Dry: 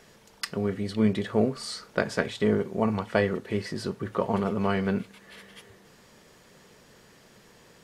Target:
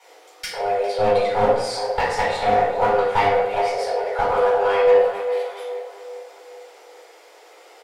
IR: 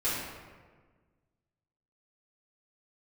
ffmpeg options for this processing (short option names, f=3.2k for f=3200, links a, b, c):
-filter_complex "[0:a]asplit=2[a][b];[b]adelay=404,lowpass=f=1.9k:p=1,volume=-10dB,asplit=2[c][d];[d]adelay=404,lowpass=f=1.9k:p=1,volume=0.47,asplit=2[e][f];[f]adelay=404,lowpass=f=1.9k:p=1,volume=0.47,asplit=2[g][h];[h]adelay=404,lowpass=f=1.9k:p=1,volume=0.47,asplit=2[i][j];[j]adelay=404,lowpass=f=1.9k:p=1,volume=0.47[k];[a][c][e][g][i][k]amix=inputs=6:normalize=0,afreqshift=300,aeval=exprs='clip(val(0),-1,0.0891)':c=same[l];[1:a]atrim=start_sample=2205,asetrate=83790,aresample=44100[m];[l][m]afir=irnorm=-1:irlink=0,volume=3dB"